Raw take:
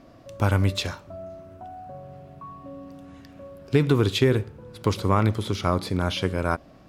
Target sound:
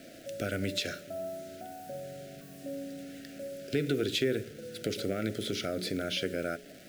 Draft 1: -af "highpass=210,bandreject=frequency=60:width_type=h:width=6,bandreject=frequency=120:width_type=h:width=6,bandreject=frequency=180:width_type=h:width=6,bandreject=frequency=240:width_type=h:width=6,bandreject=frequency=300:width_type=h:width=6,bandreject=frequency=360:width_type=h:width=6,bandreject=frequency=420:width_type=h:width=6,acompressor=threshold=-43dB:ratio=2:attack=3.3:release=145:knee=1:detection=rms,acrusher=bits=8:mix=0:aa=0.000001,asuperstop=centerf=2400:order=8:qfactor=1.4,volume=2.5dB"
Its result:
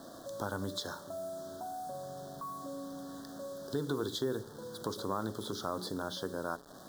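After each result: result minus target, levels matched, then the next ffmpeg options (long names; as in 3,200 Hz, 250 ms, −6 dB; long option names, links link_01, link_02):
1,000 Hz band +10.0 dB; downward compressor: peak gain reduction +5 dB
-af "highpass=210,bandreject=frequency=60:width_type=h:width=6,bandreject=frequency=120:width_type=h:width=6,bandreject=frequency=180:width_type=h:width=6,bandreject=frequency=240:width_type=h:width=6,bandreject=frequency=300:width_type=h:width=6,bandreject=frequency=360:width_type=h:width=6,bandreject=frequency=420:width_type=h:width=6,acompressor=threshold=-43dB:ratio=2:attack=3.3:release=145:knee=1:detection=rms,acrusher=bits=8:mix=0:aa=0.000001,asuperstop=centerf=980:order=8:qfactor=1.4,volume=2.5dB"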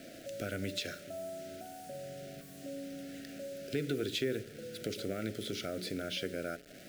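downward compressor: peak gain reduction +5 dB
-af "highpass=210,bandreject=frequency=60:width_type=h:width=6,bandreject=frequency=120:width_type=h:width=6,bandreject=frequency=180:width_type=h:width=6,bandreject=frequency=240:width_type=h:width=6,bandreject=frequency=300:width_type=h:width=6,bandreject=frequency=360:width_type=h:width=6,bandreject=frequency=420:width_type=h:width=6,acompressor=threshold=-33.5dB:ratio=2:attack=3.3:release=145:knee=1:detection=rms,acrusher=bits=8:mix=0:aa=0.000001,asuperstop=centerf=980:order=8:qfactor=1.4,volume=2.5dB"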